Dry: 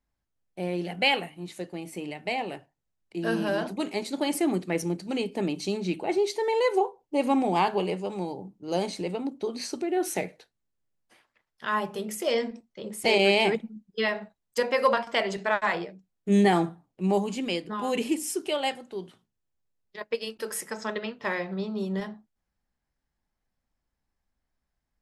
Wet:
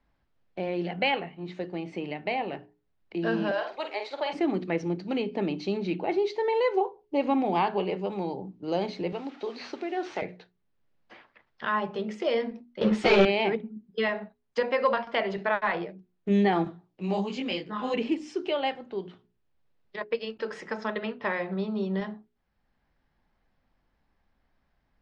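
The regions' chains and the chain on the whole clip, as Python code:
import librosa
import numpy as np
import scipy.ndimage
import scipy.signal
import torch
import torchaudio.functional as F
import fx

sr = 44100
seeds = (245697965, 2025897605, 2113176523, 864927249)

y = fx.chain(x, sr, fx.highpass(hz=520.0, slope=24),
    fx.sample_gate(floor_db=-57.0),
    fx.doubler(ms=49.0, db=-7), at=(3.51, 4.33))
y = fx.chain(y, sr, fx.delta_mod(bps=64000, step_db=-43.5),
    fx.highpass(hz=680.0, slope=6), at=(9.12, 10.22))
y = fx.chain(y, sr, fx.leveller(passes=5),
    fx.ensemble(), at=(12.81, 13.25))
y = fx.chain(y, sr, fx.high_shelf(hz=3200.0, db=12.0),
    fx.detune_double(cents=46), at=(16.64, 17.94))
y = scipy.signal.sosfilt(scipy.signal.bessel(6, 3100.0, 'lowpass', norm='mag', fs=sr, output='sos'), y)
y = fx.hum_notches(y, sr, base_hz=60, count=7)
y = fx.band_squash(y, sr, depth_pct=40)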